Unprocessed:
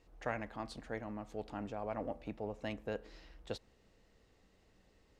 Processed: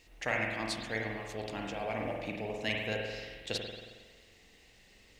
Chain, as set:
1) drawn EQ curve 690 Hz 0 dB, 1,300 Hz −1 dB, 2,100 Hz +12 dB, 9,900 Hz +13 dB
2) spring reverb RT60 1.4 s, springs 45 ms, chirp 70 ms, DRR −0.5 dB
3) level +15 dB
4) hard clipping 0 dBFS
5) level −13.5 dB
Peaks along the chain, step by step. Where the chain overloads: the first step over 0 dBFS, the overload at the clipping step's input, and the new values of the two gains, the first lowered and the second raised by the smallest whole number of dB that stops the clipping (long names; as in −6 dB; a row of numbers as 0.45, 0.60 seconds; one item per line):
−18.0, −18.0, −3.0, −3.0, −16.5 dBFS
no step passes full scale